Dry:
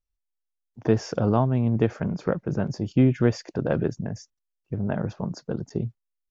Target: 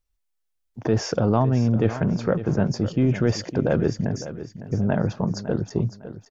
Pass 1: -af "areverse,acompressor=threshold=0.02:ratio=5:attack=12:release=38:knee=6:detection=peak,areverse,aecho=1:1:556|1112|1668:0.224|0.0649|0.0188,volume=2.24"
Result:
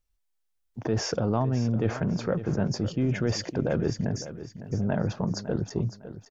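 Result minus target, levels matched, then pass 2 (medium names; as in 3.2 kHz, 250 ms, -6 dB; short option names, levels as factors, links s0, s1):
compression: peak gain reduction +6 dB
-af "areverse,acompressor=threshold=0.0473:ratio=5:attack=12:release=38:knee=6:detection=peak,areverse,aecho=1:1:556|1112|1668:0.224|0.0649|0.0188,volume=2.24"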